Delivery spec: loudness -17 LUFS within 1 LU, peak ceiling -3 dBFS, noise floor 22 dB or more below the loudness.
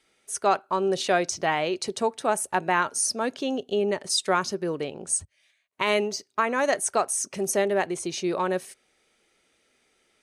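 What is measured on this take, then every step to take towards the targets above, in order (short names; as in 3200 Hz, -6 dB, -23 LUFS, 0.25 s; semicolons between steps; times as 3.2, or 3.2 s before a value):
loudness -26.0 LUFS; peak -9.5 dBFS; loudness target -17.0 LUFS
-> gain +9 dB; limiter -3 dBFS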